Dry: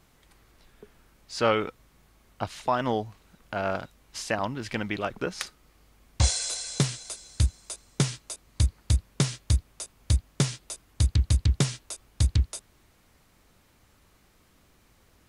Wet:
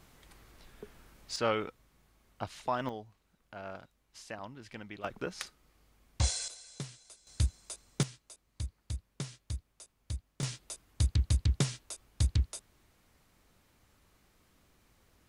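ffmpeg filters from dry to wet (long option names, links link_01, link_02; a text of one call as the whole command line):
ffmpeg -i in.wav -af "asetnsamples=nb_out_samples=441:pad=0,asendcmd='1.36 volume volume -7dB;2.89 volume volume -15dB;5.04 volume volume -7dB;6.48 volume volume -17dB;7.27 volume volume -6dB;8.03 volume volume -15dB;10.43 volume volume -5.5dB',volume=1.5dB" out.wav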